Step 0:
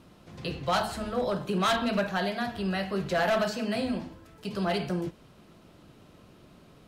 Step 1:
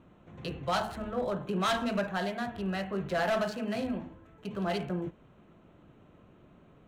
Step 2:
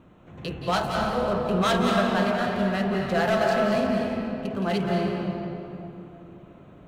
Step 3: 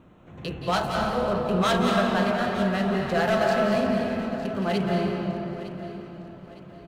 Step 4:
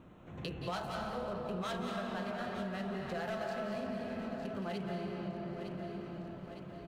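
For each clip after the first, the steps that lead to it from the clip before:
Wiener smoothing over 9 samples; gain -3 dB
reverb RT60 3.0 s, pre-delay 0.165 s, DRR -0.5 dB; gain +4.5 dB
feedback echo 0.909 s, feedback 38%, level -15 dB
compressor 4:1, threshold -35 dBFS, peak gain reduction 14.5 dB; gain -3 dB

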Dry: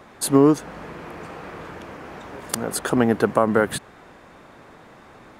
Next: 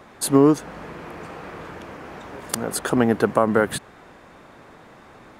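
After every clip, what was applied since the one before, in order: nothing audible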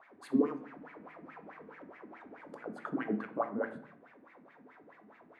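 G.711 law mismatch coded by mu; wah 4.7 Hz 210–2200 Hz, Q 6.2; shoebox room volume 92 m³, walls mixed, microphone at 0.32 m; gain -6 dB

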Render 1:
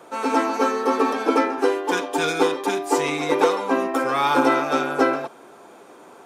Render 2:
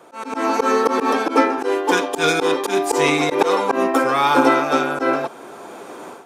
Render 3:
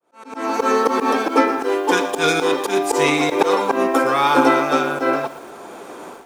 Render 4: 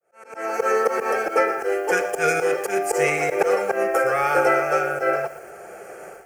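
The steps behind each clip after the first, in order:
auto swell 0.106 s; AGC gain up to 13 dB; gain -1 dB
opening faded in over 0.68 s; lo-fi delay 0.117 s, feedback 35%, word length 6-bit, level -14 dB
fixed phaser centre 1000 Hz, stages 6

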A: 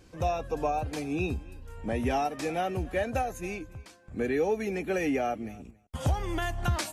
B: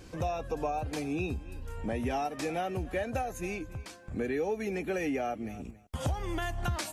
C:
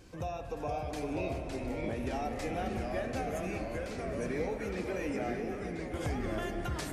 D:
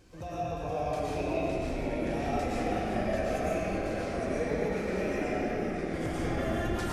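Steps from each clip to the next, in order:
compressor 2:1, threshold -43 dBFS, peak gain reduction 11.5 dB; gain +6 dB
split-band echo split 530 Hz, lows 0.631 s, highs 0.385 s, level -11 dB; spring tank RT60 3 s, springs 49 ms, chirp 70 ms, DRR 6.5 dB; echoes that change speed 0.447 s, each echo -2 st, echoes 3; gain -5.5 dB
digital reverb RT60 2 s, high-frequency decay 0.75×, pre-delay 75 ms, DRR -7 dB; gain -3.5 dB

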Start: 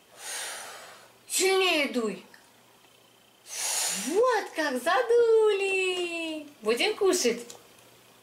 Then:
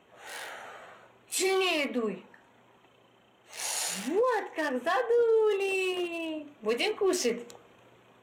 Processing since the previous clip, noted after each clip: Wiener smoothing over 9 samples; in parallel at -1 dB: limiter -23 dBFS, peak gain reduction 8.5 dB; on the sum: gain -6 dB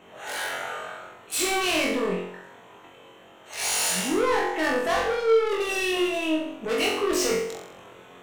soft clip -32 dBFS, distortion -7 dB; flutter echo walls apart 3.8 m, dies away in 0.64 s; gain +7.5 dB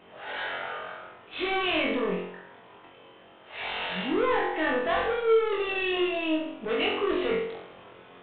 gain -2 dB; G.726 40 kbps 8000 Hz

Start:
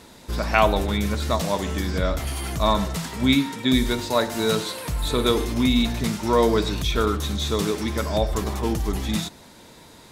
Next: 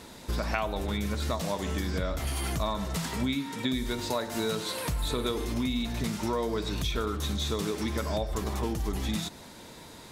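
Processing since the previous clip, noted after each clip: compressor 6:1, threshold -27 dBFS, peak gain reduction 14.5 dB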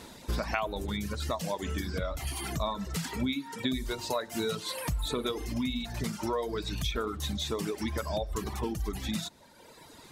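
reverb removal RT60 1.7 s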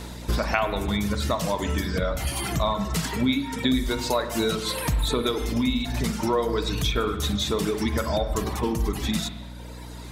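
spring tank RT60 1.2 s, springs 39/50 ms, chirp 20 ms, DRR 8 dB; hum 60 Hz, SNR 14 dB; gain +7 dB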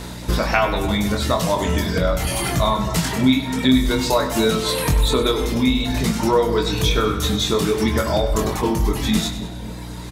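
doubler 23 ms -5 dB; on a send: split-band echo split 970 Hz, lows 0.266 s, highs 98 ms, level -12.5 dB; on the sum: gain +4.5 dB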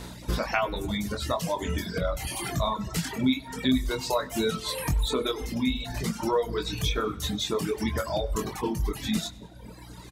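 reverb removal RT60 1.5 s; gain -7.5 dB

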